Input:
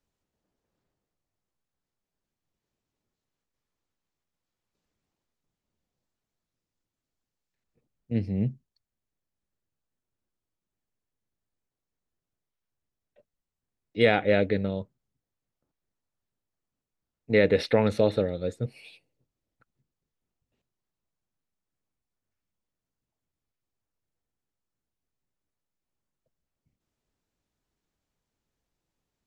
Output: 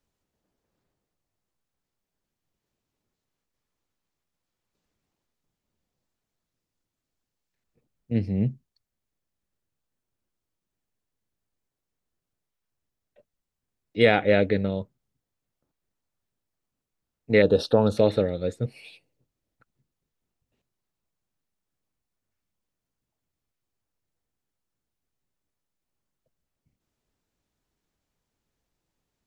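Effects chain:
0:17.42–0:17.97: Butterworth band-reject 2,100 Hz, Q 1.1
level +2.5 dB

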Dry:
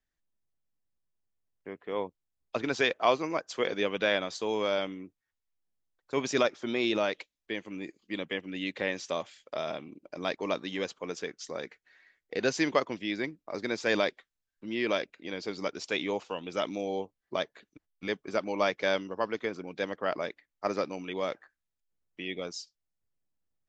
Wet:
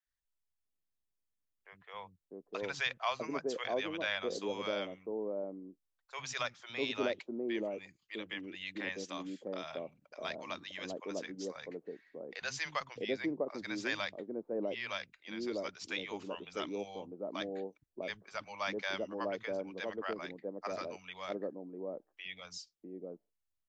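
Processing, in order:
three-band delay without the direct sound highs, lows, mids 60/650 ms, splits 150/710 Hz
level −5.5 dB

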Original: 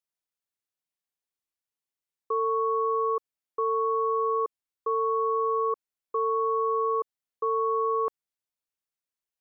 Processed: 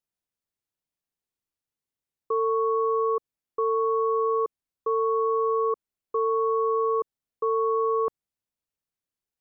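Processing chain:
low-shelf EQ 430 Hz +10 dB
level −1.5 dB

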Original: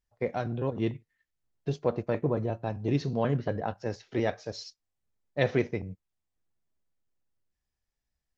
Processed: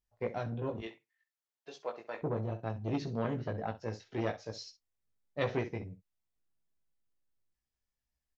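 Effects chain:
0:00.80–0:02.22: high-pass filter 700 Hz 12 dB per octave
on a send: ambience of single reflections 18 ms −4 dB, 65 ms −13.5 dB
on the sum: saturating transformer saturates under 630 Hz
level −6 dB

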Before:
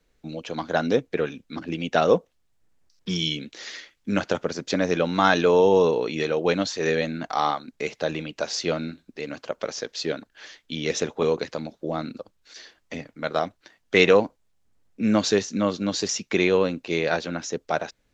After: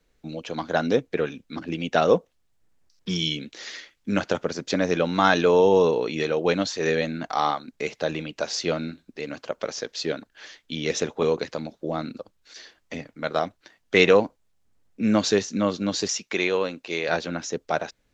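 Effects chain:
0:16.08–0:17.09: low-shelf EQ 310 Hz −12 dB

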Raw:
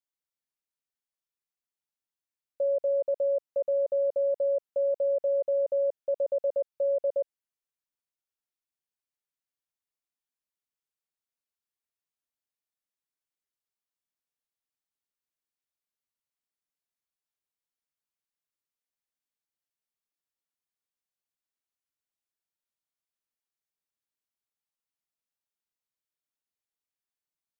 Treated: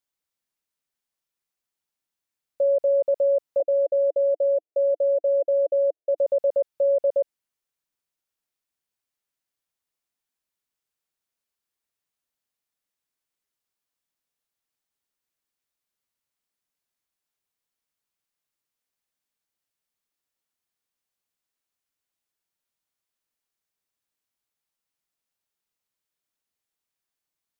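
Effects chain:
0:03.60–0:06.18: elliptic band-pass filter 310–690 Hz
level +6 dB

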